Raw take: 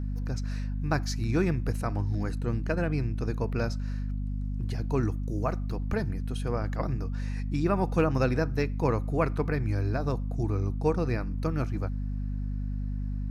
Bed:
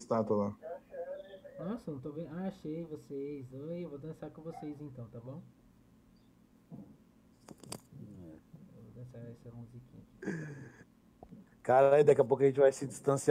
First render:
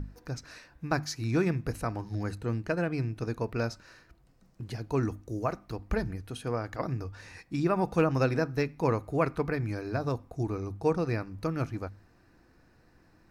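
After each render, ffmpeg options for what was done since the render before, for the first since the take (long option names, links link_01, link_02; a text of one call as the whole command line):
ffmpeg -i in.wav -af "bandreject=frequency=50:width_type=h:width=6,bandreject=frequency=100:width_type=h:width=6,bandreject=frequency=150:width_type=h:width=6,bandreject=frequency=200:width_type=h:width=6,bandreject=frequency=250:width_type=h:width=6" out.wav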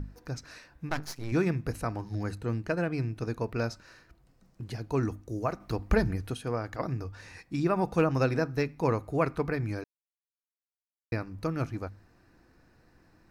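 ffmpeg -i in.wav -filter_complex "[0:a]asettb=1/sr,asplit=3[link_01][link_02][link_03];[link_01]atrim=end=0.894[link_04];[link_02]atrim=start=0.89:end=1.32,asetpts=PTS-STARTPTS,afade=type=in:duration=0.004:curve=qsin,afade=type=out:start_time=0.426:duration=0.004:curve=qsin,aeval=exprs='max(val(0),0)':channel_layout=same[link_05];[link_03]atrim=start=1.316[link_06];[link_04][link_05]acrossfade=duration=0.004:curve1=hsin:curve2=qsin[link_07];[link_07][link_06]acrossfade=duration=0.004:curve1=qsin:curve2=hsin,asettb=1/sr,asplit=3[link_08][link_09][link_10];[link_08]atrim=end=5.604[link_11];[link_09]atrim=start=5.6:end=6.34,asetpts=PTS-STARTPTS,afade=type=in:duration=0.004:curve=qsin,afade=type=out:start_time=0.736:duration=0.004:curve=qsin,acontrast=36[link_12];[link_10]atrim=start=6.336[link_13];[link_11][link_12]acrossfade=duration=0.004:curve1=hsin:curve2=qsin[link_14];[link_14][link_13]acrossfade=duration=0.004:curve1=qsin:curve2=hsin,asplit=3[link_15][link_16][link_17];[link_15]atrim=end=9.84,asetpts=PTS-STARTPTS,afade=type=out:start_time=9.836:duration=0.004:curve=hsin[link_18];[link_16]atrim=start=9.84:end=11.12,asetpts=PTS-STARTPTS,volume=0[link_19];[link_17]atrim=start=11.12,asetpts=PTS-STARTPTS,afade=type=in:duration=0.004:curve=hsin[link_20];[link_18][link_19][link_20]concat=n=3:v=0:a=1" out.wav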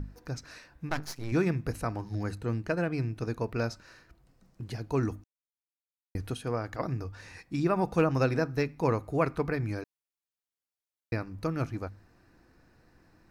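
ffmpeg -i in.wav -filter_complex "[0:a]asplit=3[link_01][link_02][link_03];[link_01]atrim=end=5.24,asetpts=PTS-STARTPTS,afade=type=out:start_time=5.236:duration=0.004:curve=hsin[link_04];[link_02]atrim=start=5.24:end=6.15,asetpts=PTS-STARTPTS,volume=0[link_05];[link_03]atrim=start=6.15,asetpts=PTS-STARTPTS,afade=type=in:duration=0.004:curve=hsin[link_06];[link_04][link_05][link_06]concat=n=3:v=0:a=1" out.wav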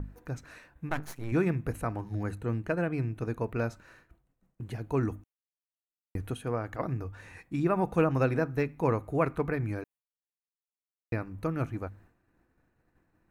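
ffmpeg -i in.wav -af "agate=range=-33dB:threshold=-53dB:ratio=3:detection=peak,equalizer=frequency=5000:width_type=o:width=0.61:gain=-14.5" out.wav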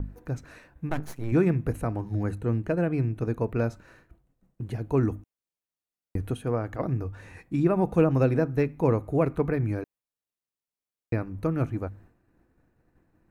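ffmpeg -i in.wav -filter_complex "[0:a]acrossover=split=710|2200[link_01][link_02][link_03];[link_01]acontrast=30[link_04];[link_02]alimiter=level_in=4dB:limit=-24dB:level=0:latency=1:release=222,volume=-4dB[link_05];[link_04][link_05][link_03]amix=inputs=3:normalize=0" out.wav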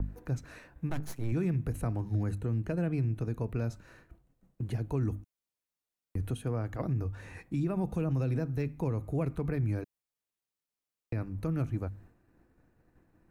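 ffmpeg -i in.wav -filter_complex "[0:a]acrossover=split=200|3000[link_01][link_02][link_03];[link_02]acompressor=threshold=-47dB:ratio=1.5[link_04];[link_01][link_04][link_03]amix=inputs=3:normalize=0,alimiter=limit=-23dB:level=0:latency=1:release=53" out.wav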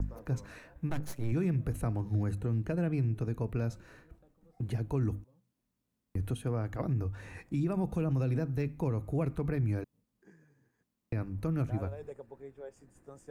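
ffmpeg -i in.wav -i bed.wav -filter_complex "[1:a]volume=-21dB[link_01];[0:a][link_01]amix=inputs=2:normalize=0" out.wav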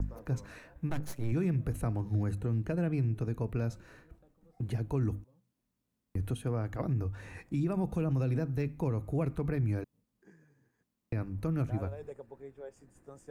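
ffmpeg -i in.wav -af anull out.wav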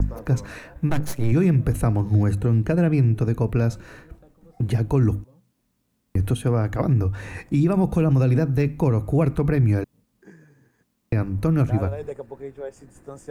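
ffmpeg -i in.wav -af "volume=12dB" out.wav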